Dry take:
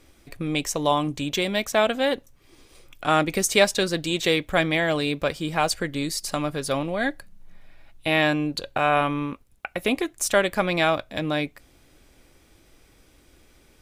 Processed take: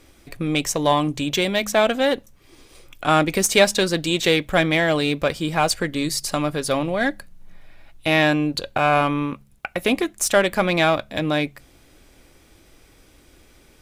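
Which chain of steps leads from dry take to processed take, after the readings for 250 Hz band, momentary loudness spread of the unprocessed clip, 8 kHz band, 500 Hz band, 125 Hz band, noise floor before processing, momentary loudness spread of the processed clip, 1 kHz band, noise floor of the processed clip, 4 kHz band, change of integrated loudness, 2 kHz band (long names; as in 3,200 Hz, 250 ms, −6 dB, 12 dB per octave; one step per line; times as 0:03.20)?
+4.0 dB, 7 LU, +3.5 dB, +3.5 dB, +4.0 dB, −58 dBFS, 7 LU, +3.0 dB, −54 dBFS, +3.5 dB, +3.5 dB, +3.0 dB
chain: hum removal 69.27 Hz, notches 3
in parallel at −4.5 dB: asymmetric clip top −22.5 dBFS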